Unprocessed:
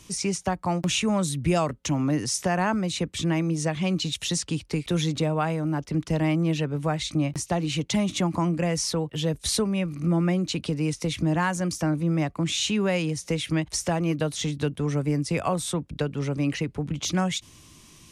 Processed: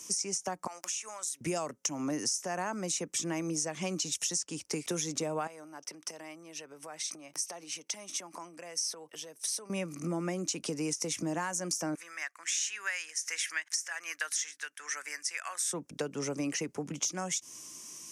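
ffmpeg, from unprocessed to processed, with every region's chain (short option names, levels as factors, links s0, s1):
-filter_complex "[0:a]asettb=1/sr,asplit=3[s0][s1][s2];[s0]atrim=end=0.674[s3];[s1]atrim=start=0.67:end=1.41,asetpts=PTS-STARTPTS,afade=t=in:d=0.004:c=qsin,afade=t=out:st=0.736:d=0.004:c=qsin,highpass=1100,acompressor=threshold=0.0112:ratio=4:attack=3.2:release=140:knee=1:detection=peak[s4];[s2]atrim=start=1.406[s5];[s3][s4]acrossfade=d=0.004:c1=hsin:c2=qsin[s6];[s6][s5]acrossfade=d=0.004:c1=qsin:c2=hsin,asettb=1/sr,asplit=3[s7][s8][s9];[s7]atrim=end=5.474[s10];[s8]atrim=start=5.47:end=9.7,asetpts=PTS-STARTPTS,afade=t=in:d=0.004:c=qsin,afade=t=out:st=4.226:d=0.004:c=qsin,bandreject=f=7000:w=5.6,acompressor=threshold=0.0251:ratio=12:attack=3.2:release=140:knee=1:detection=peak,highpass=f=780:p=1[s11];[s9]atrim=start=9.696[s12];[s10][s11]acrossfade=d=0.004:c1=hsin:c2=qsin[s13];[s13][s12]acrossfade=d=0.004:c1=qsin:c2=hsin,asettb=1/sr,asplit=3[s14][s15][s16];[s14]atrim=end=11.954[s17];[s15]atrim=start=11.95:end=15.72,asetpts=PTS-STARTPTS,afade=t=in:d=0.004:c=qsin,afade=t=out:st=3.766:d=0.004:c=qsin,highpass=f=1700:t=q:w=4.3,tremolo=f=1.3:d=0.51[s18];[s16]atrim=start=15.716[s19];[s17][s18]acrossfade=d=0.004:c1=hsin:c2=qsin[s20];[s20][s19]acrossfade=d=0.004:c1=qsin:c2=hsin,highpass=290,highshelf=f=4800:t=q:w=3:g=6.5,acompressor=threshold=0.0398:ratio=12,volume=0.841"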